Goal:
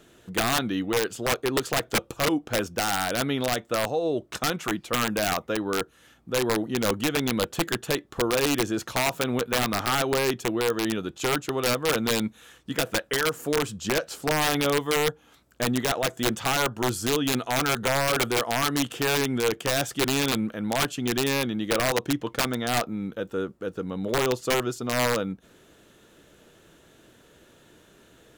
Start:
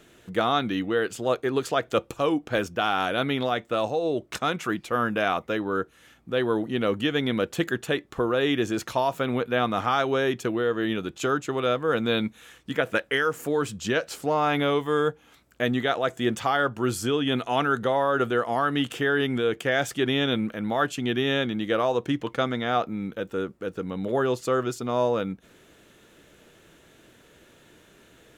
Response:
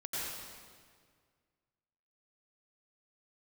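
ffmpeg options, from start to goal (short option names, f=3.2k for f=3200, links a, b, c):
-af "equalizer=f=2.2k:t=o:w=0.6:g=-4.5,aeval=exprs='(mod(6.68*val(0)+1,2)-1)/6.68':c=same"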